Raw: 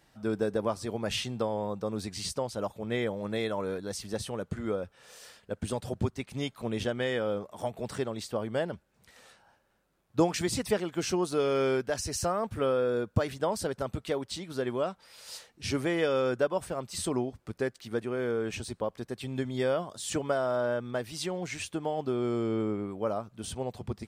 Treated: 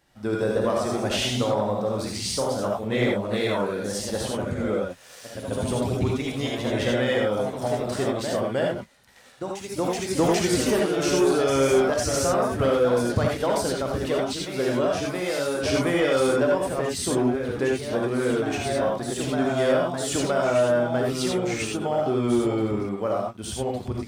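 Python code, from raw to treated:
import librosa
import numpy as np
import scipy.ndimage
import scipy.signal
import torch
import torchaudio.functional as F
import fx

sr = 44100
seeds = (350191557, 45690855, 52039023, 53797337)

y = fx.rev_gated(x, sr, seeds[0], gate_ms=110, shape='rising', drr_db=-0.5)
y = fx.echo_pitch(y, sr, ms=170, semitones=1, count=2, db_per_echo=-6.0)
y = fx.leveller(y, sr, passes=1)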